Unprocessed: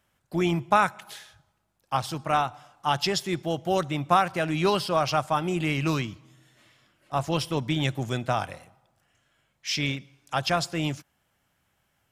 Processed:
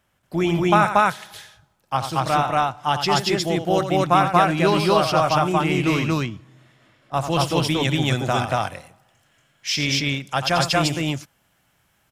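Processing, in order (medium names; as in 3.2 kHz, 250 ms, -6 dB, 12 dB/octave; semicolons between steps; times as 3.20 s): treble shelf 2.7 kHz -2 dB, from 6.03 s -10.5 dB, from 7.14 s +2 dB; loudspeakers at several distances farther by 30 m -9 dB, 80 m 0 dB; trim +3.5 dB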